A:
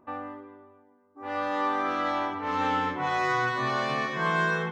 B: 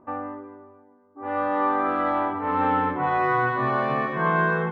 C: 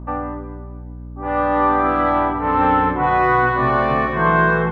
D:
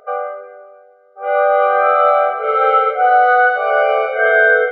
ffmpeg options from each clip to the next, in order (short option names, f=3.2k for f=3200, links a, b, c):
-af "lowpass=1.5k,volume=5.5dB"
-af "aeval=exprs='val(0)+0.0126*(sin(2*PI*60*n/s)+sin(2*PI*2*60*n/s)/2+sin(2*PI*3*60*n/s)/3+sin(2*PI*4*60*n/s)/4+sin(2*PI*5*60*n/s)/5)':c=same,volume=6.5dB"
-af "highpass=150,lowpass=3.7k,afftfilt=real='re*eq(mod(floor(b*sr/1024/400),2),1)':imag='im*eq(mod(floor(b*sr/1024/400),2),1)':win_size=1024:overlap=0.75,volume=8dB"